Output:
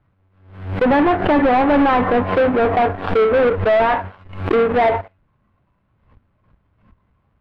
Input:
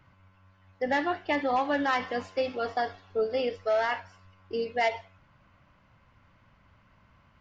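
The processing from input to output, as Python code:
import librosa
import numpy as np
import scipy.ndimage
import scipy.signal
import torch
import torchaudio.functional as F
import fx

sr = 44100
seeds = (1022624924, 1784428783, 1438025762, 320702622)

y = fx.halfwave_hold(x, sr)
y = fx.noise_reduce_blind(y, sr, reduce_db=8)
y = fx.env_lowpass_down(y, sr, base_hz=1700.0, full_db=-24.5)
y = fx.leveller(y, sr, passes=3)
y = fx.air_absorb(y, sr, metres=490.0)
y = fx.pre_swell(y, sr, db_per_s=91.0)
y = y * 10.0 ** (7.0 / 20.0)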